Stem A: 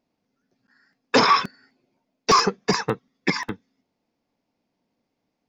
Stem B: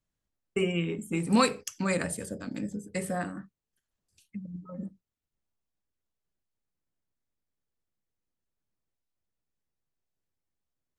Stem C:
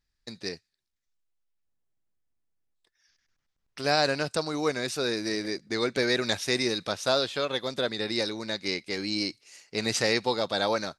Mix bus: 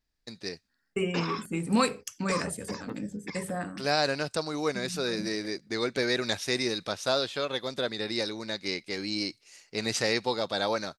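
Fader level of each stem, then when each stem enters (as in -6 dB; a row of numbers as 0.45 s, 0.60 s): -17.5 dB, -1.5 dB, -2.0 dB; 0.00 s, 0.40 s, 0.00 s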